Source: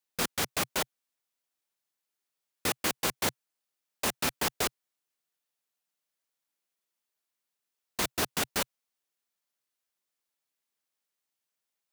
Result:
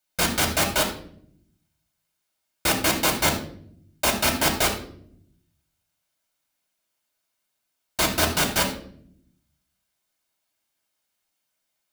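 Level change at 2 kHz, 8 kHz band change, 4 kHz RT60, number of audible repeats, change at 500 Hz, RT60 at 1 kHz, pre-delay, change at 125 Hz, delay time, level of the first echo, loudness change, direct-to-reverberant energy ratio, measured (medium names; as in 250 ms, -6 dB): +9.5 dB, +8.0 dB, 0.45 s, no echo, +9.0 dB, 0.50 s, 3 ms, +12.0 dB, no echo, no echo, +8.5 dB, 0.0 dB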